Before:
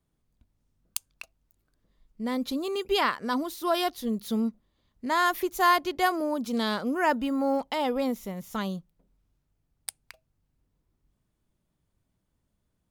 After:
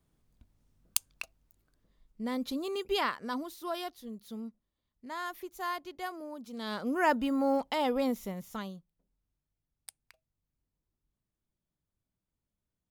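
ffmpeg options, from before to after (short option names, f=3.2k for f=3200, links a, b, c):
-af "volume=15dB,afade=t=out:st=1.1:d=1.2:silence=0.421697,afade=t=out:st=2.81:d=1.27:silence=0.334965,afade=t=in:st=6.57:d=0.42:silence=0.251189,afade=t=out:st=8.27:d=0.47:silence=0.316228"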